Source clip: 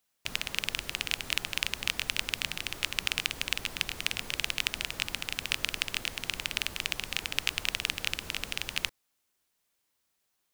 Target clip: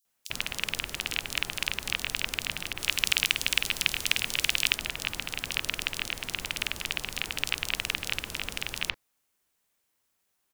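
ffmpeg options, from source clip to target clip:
-filter_complex "[0:a]acrossover=split=4300[a][b];[a]adelay=50[c];[c][b]amix=inputs=2:normalize=0,asettb=1/sr,asplit=3[d][e][f];[d]atrim=end=2.734[g];[e]atrim=start=2.73:end=4.76,asetpts=PTS-STARTPTS,afade=t=in:d=0.004:c=qsin,afade=t=out:st=2.026:d=0.004:c=qsin,adynamicequalizer=threshold=0.00562:dfrequency=1900:dqfactor=0.7:tfrequency=1900:tqfactor=0.7:attack=5:release=100:ratio=0.375:range=3:mode=boostabove:tftype=highshelf[h];[f]atrim=start=4.756[i];[g][h]acrossfade=d=0.004:c1=hsin:c2=qsin[j];[j][i]acrossfade=d=0.004:c1=qsin:c2=hsin,volume=2dB"

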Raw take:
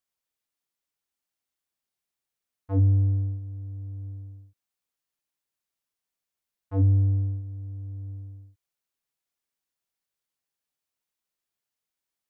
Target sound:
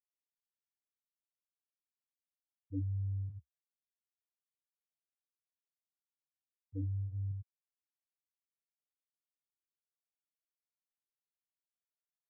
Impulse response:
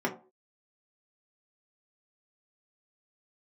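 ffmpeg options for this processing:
-filter_complex "[0:a]bandreject=f=50:t=h:w=6,bandreject=f=100:t=h:w=6,afftfilt=real='re*gte(hypot(re,im),0.224)':imag='im*gte(hypot(re,im),0.224)':win_size=1024:overlap=0.75,equalizer=f=480:w=0.51:g=-13,areverse,acompressor=threshold=-33dB:ratio=5,areverse,flanger=delay=1.8:depth=7.5:regen=-62:speed=0.67:shape=sinusoidal,acrossover=split=120|470[a][b][c];[a]acrusher=bits=4:mix=0:aa=0.000001[d];[d][b][c]amix=inputs=3:normalize=0,volume=12dB"

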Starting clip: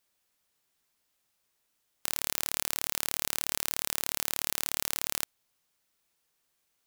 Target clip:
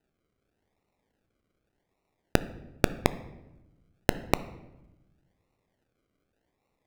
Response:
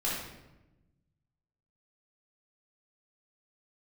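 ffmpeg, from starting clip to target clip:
-filter_complex "[0:a]acrusher=samples=39:mix=1:aa=0.000001:lfo=1:lforange=23.4:lforate=0.86,equalizer=f=2.1k:w=1.2:g=3,asplit=2[a][b];[1:a]atrim=start_sample=2205,highshelf=f=5.6k:g=-6.5[c];[b][c]afir=irnorm=-1:irlink=0,volume=-19dB[d];[a][d]amix=inputs=2:normalize=0,volume=-2.5dB"

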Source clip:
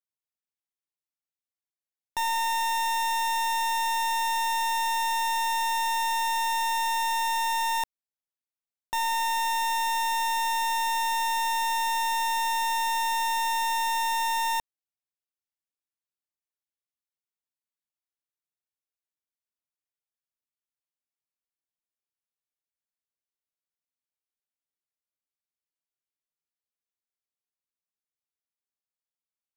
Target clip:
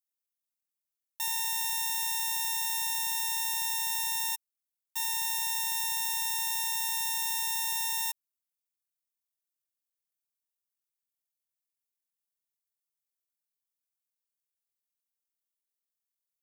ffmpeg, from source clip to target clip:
-af "aderivative,atempo=1.8,volume=3dB"

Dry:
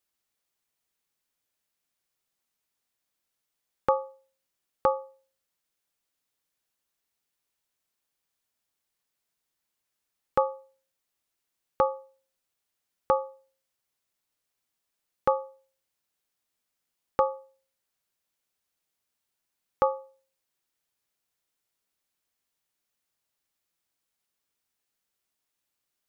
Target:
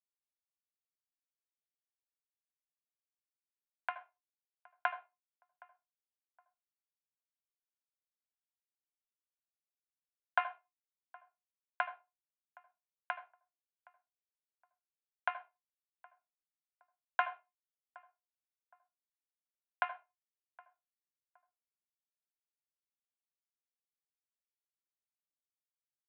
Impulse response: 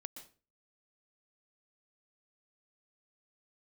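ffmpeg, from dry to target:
-filter_complex "[0:a]equalizer=f=1.5k:t=o:w=0.25:g=12,bandreject=f=1.1k:w=6.1,aecho=1:1:1.5:0.54,acompressor=threshold=-30dB:ratio=10,aeval=exprs='sgn(val(0))*max(abs(val(0))-0.0188,0)':c=same,tremolo=f=0.87:d=0.74,asoftclip=type=tanh:threshold=-21dB,asplit=2[a][b];[b]adelay=767,lowpass=f=1.1k:p=1,volume=-22dB,asplit=2[c][d];[d]adelay=767,lowpass=f=1.1k:p=1,volume=0.32[e];[a][c][e]amix=inputs=3:normalize=0,asplit=2[f][g];[1:a]atrim=start_sample=2205,asetrate=70560,aresample=44100,lowshelf=f=280:g=11.5[h];[g][h]afir=irnorm=-1:irlink=0,volume=4dB[i];[f][i]amix=inputs=2:normalize=0,highpass=f=550:t=q:w=0.5412,highpass=f=550:t=q:w=1.307,lowpass=f=2.8k:t=q:w=0.5176,lowpass=f=2.8k:t=q:w=0.7071,lowpass=f=2.8k:t=q:w=1.932,afreqshift=190,volume=5.5dB"

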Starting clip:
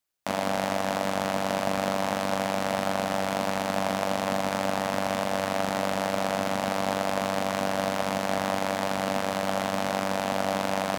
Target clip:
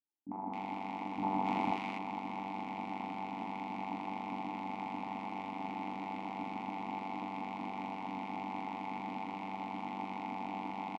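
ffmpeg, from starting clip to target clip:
-filter_complex "[0:a]asplit=3[a][b][c];[a]bandpass=f=300:t=q:w=8,volume=0dB[d];[b]bandpass=f=870:t=q:w=8,volume=-6dB[e];[c]bandpass=f=2.24k:t=q:w=8,volume=-9dB[f];[d][e][f]amix=inputs=3:normalize=0,equalizer=f=2.3k:t=o:w=0.21:g=-2.5,bandreject=f=162.2:t=h:w=4,bandreject=f=324.4:t=h:w=4,bandreject=f=486.6:t=h:w=4,bandreject=f=648.8:t=h:w=4,bandreject=f=811:t=h:w=4,bandreject=f=973.2:t=h:w=4,bandreject=f=1.1354k:t=h:w=4,bandreject=f=1.2976k:t=h:w=4,bandreject=f=1.4598k:t=h:w=4,bandreject=f=1.622k:t=h:w=4,bandreject=f=1.7842k:t=h:w=4,bandreject=f=1.9464k:t=h:w=4,bandreject=f=2.1086k:t=h:w=4,bandreject=f=2.2708k:t=h:w=4,bandreject=f=2.433k:t=h:w=4,bandreject=f=2.5952k:t=h:w=4,bandreject=f=2.7574k:t=h:w=4,bandreject=f=2.9196k:t=h:w=4,bandreject=f=3.0818k:t=h:w=4,bandreject=f=3.244k:t=h:w=4,bandreject=f=3.4062k:t=h:w=4,bandreject=f=3.5684k:t=h:w=4,bandreject=f=3.7306k:t=h:w=4,bandreject=f=3.8928k:t=h:w=4,bandreject=f=4.055k:t=h:w=4,bandreject=f=4.2172k:t=h:w=4,bandreject=f=4.3794k:t=h:w=4,bandreject=f=4.5416k:t=h:w=4,bandreject=f=4.7038k:t=h:w=4,bandreject=f=4.866k:t=h:w=4,bandreject=f=5.0282k:t=h:w=4,bandreject=f=5.1904k:t=h:w=4,bandreject=f=5.3526k:t=h:w=4,bandreject=f=5.5148k:t=h:w=4,bandreject=f=5.677k:t=h:w=4,bandreject=f=5.8392k:t=h:w=4,bandreject=f=6.0014k:t=h:w=4,bandreject=f=6.1636k:t=h:w=4,asettb=1/sr,asplit=3[g][h][i];[g]atrim=end=1.184[j];[h]atrim=start=1.18:end=1.71,asetpts=PTS-STARTPTS,afade=t=in:d=0.004:c=qsin,afade=t=out:st=0.526:d=0.004:c=qsin,acontrast=90[k];[i]atrim=start=1.706[l];[j][k]acrossfade=d=0.004:c1=hsin:c2=qsin[m];[m][l]acrossfade=d=0.004:c1=qsin:c2=hsin,aemphasis=mode=reproduction:type=cd,acrossover=split=310|1200[n][o][p];[o]adelay=50[q];[p]adelay=270[r];[n][q][r]amix=inputs=3:normalize=0,volume=4.5dB"

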